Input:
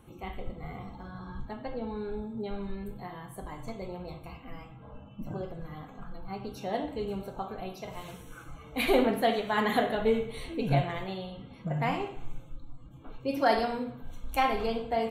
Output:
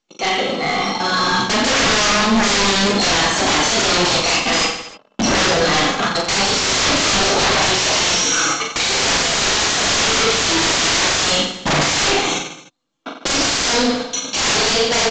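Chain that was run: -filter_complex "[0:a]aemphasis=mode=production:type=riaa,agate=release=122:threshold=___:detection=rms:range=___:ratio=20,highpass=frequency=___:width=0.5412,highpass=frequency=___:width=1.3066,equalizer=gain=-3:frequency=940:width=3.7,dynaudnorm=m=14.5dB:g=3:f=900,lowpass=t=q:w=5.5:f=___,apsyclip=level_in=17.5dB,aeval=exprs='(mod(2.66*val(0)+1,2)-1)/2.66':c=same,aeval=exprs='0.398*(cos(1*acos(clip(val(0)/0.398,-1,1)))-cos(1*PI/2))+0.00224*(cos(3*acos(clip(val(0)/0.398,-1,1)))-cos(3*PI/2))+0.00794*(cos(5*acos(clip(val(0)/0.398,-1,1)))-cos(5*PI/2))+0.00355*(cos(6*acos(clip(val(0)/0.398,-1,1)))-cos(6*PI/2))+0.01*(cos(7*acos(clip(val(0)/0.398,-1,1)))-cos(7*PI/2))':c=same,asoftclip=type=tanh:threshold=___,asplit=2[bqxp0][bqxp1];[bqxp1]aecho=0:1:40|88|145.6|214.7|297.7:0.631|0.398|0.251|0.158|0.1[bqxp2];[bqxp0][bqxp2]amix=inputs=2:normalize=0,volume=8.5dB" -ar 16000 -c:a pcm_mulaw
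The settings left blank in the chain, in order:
-48dB, -55dB, 180, 180, 5200, -24.5dB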